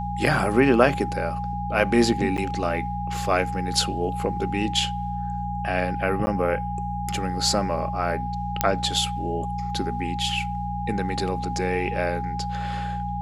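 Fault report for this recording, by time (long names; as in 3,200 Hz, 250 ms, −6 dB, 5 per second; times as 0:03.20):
mains hum 60 Hz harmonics 3 −31 dBFS
whistle 820 Hz −29 dBFS
0:02.37–0:02.38: drop-out 7.8 ms
0:06.26–0:06.27: drop-out 10 ms
0:08.61: click −3 dBFS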